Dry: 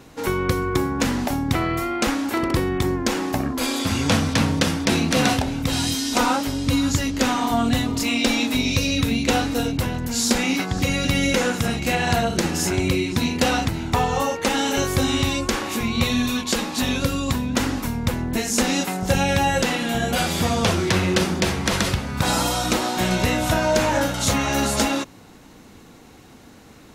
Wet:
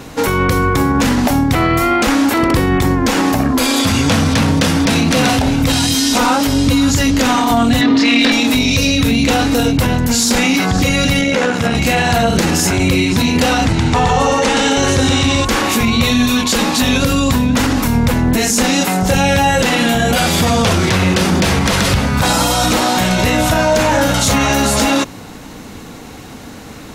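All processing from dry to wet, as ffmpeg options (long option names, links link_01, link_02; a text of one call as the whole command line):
ffmpeg -i in.wav -filter_complex "[0:a]asettb=1/sr,asplit=3[link_01][link_02][link_03];[link_01]atrim=end=7.814[link_04];[link_02]atrim=start=7.81:end=8.32,asetpts=PTS-STARTPTS,afade=type=in:duration=0.004:curve=qsin,afade=type=out:start_time=0.506:duration=0.004:curve=qsin,acontrast=40,highpass=240,equalizer=frequency=270:width_type=q:width=4:gain=6,equalizer=frequency=810:width_type=q:width=4:gain=-4,equalizer=frequency=1800:width_type=q:width=4:gain=9,equalizer=frequency=3900:width_type=q:width=4:gain=3,lowpass=frequency=4900:width=0.5412,lowpass=frequency=4900:width=1.3066[link_05];[link_03]atrim=start=8.316[link_06];[link_04][link_05]acrossfade=duration=0.004:curve1=hsin:curve2=qsin[link_07];[link_07][link_06]acrossfade=duration=0.004:curve1=qsin:curve2=hsin,asettb=1/sr,asplit=3[link_08][link_09][link_10];[link_08]atrim=end=11.214[link_11];[link_09]atrim=start=11.21:end=11.75,asetpts=PTS-STARTPTS,afade=type=in:duration=0.004:curve=qsin,afade=type=out:start_time=0.536:duration=0.004:curve=qsin,highpass=frequency=170:poles=1,aemphasis=mode=reproduction:type=50fm,tremolo=f=72:d=0.519[link_12];[link_10]atrim=start=11.746[link_13];[link_11][link_12]acrossfade=duration=0.004:curve1=hsin:curve2=qsin[link_14];[link_14][link_13]acrossfade=duration=0.004:curve1=qsin:curve2=hsin,asettb=1/sr,asplit=3[link_15][link_16][link_17];[link_15]atrim=end=13.674[link_18];[link_16]atrim=start=13.67:end=15.45,asetpts=PTS-STARTPTS,afade=type=in:duration=0.004:curve=qsin,afade=type=out:start_time=1.776:duration=0.004:curve=qsin,lowpass=frequency=9100:width=0.5412,lowpass=frequency=9100:width=1.3066,aecho=1:1:121:0.631,atrim=end_sample=78498[link_19];[link_17]atrim=start=15.446[link_20];[link_18][link_19]acrossfade=duration=0.004:curve1=hsin:curve2=qsin[link_21];[link_21][link_20]acrossfade=duration=0.004:curve1=qsin:curve2=hsin,acontrast=78,bandreject=frequency=360:width=12,alimiter=level_in=11.5dB:limit=-1dB:release=50:level=0:latency=1,volume=-4.5dB" out.wav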